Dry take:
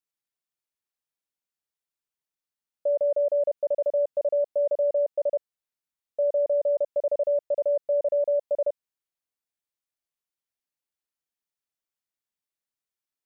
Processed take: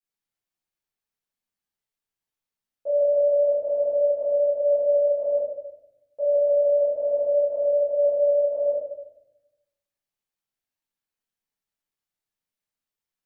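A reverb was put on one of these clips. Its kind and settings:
rectangular room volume 290 cubic metres, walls mixed, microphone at 3.8 metres
level −8.5 dB

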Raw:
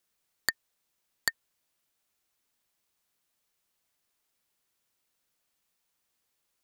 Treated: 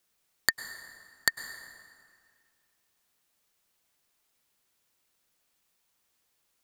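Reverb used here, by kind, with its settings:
dense smooth reverb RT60 2.1 s, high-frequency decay 0.7×, pre-delay 90 ms, DRR 10.5 dB
level +3.5 dB

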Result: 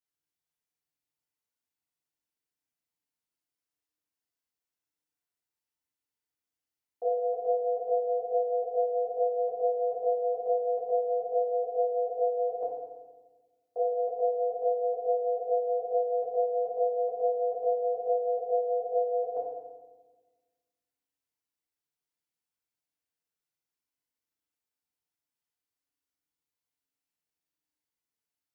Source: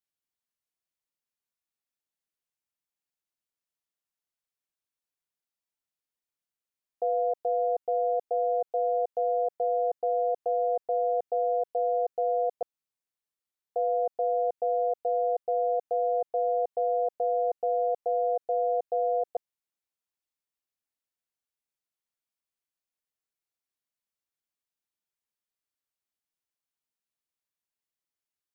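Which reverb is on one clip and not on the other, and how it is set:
feedback delay network reverb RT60 1.3 s, low-frequency decay 1.5×, high-frequency decay 0.8×, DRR −7.5 dB
level −8.5 dB

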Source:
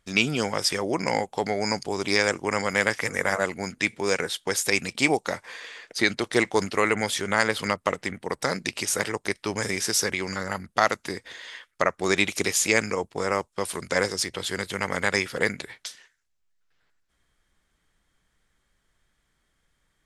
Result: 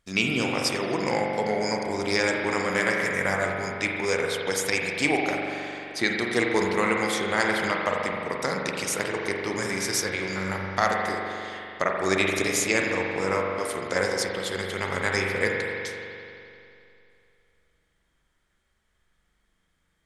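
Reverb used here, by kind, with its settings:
spring reverb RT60 2.7 s, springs 42 ms, chirp 45 ms, DRR −0.5 dB
level −3 dB

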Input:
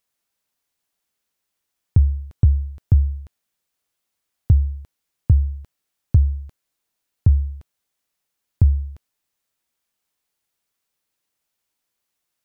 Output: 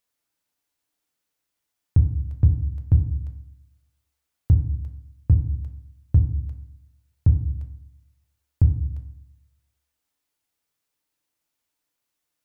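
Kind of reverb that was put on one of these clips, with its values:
feedback delay network reverb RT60 0.65 s, low-frequency decay 1.55×, high-frequency decay 0.5×, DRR 5 dB
level −3 dB

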